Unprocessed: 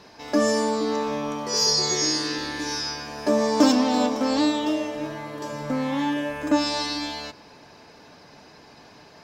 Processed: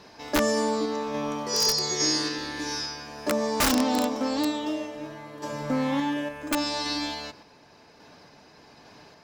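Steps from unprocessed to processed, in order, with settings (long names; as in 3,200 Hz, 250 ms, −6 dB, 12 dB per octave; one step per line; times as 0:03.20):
wrap-around overflow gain 11.5 dB
sample-and-hold tremolo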